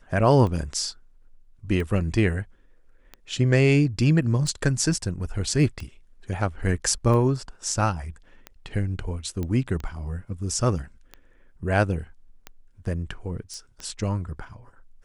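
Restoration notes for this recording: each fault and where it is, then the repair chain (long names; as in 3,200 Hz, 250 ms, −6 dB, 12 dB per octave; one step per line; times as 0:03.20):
scratch tick 45 rpm −21 dBFS
0:09.43: click −18 dBFS
0:13.54: click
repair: click removal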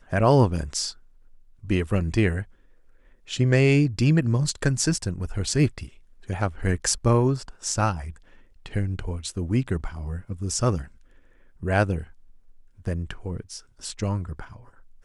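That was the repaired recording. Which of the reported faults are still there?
none of them is left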